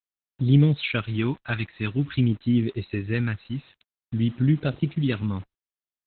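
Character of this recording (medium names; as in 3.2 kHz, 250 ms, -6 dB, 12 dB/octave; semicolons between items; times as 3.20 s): phasing stages 2, 0.48 Hz, lowest notch 470–1000 Hz; a quantiser's noise floor 8-bit, dither none; Opus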